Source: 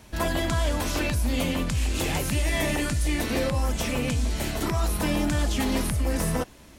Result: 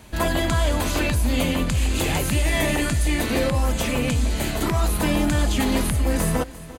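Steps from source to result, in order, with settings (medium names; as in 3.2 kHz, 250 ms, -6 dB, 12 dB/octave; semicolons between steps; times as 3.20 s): band-stop 5.5 kHz, Q 7.3; on a send: delay 346 ms -17.5 dB; on the sum: trim +4 dB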